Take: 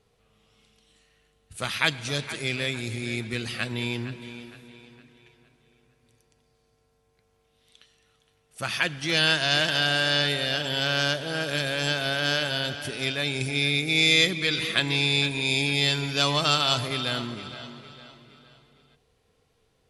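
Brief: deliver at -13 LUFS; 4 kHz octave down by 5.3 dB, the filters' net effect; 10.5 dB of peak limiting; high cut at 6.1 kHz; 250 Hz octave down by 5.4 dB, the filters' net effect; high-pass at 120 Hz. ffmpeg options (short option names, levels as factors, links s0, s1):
-af "highpass=120,lowpass=6100,equalizer=f=250:t=o:g=-7,equalizer=f=4000:t=o:g=-6,volume=7.94,alimiter=limit=0.944:level=0:latency=1"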